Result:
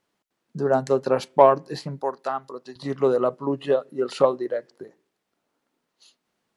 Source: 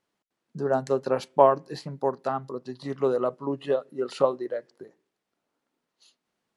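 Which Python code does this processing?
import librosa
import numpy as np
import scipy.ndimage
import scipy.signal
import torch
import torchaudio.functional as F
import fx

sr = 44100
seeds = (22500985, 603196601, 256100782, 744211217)

p1 = fx.highpass(x, sr, hz=780.0, slope=6, at=(2.01, 2.76))
p2 = 10.0 ** (-13.0 / 20.0) * np.tanh(p1 / 10.0 ** (-13.0 / 20.0))
p3 = p1 + F.gain(torch.from_numpy(p2), -7.0).numpy()
y = F.gain(torch.from_numpy(p3), 1.0).numpy()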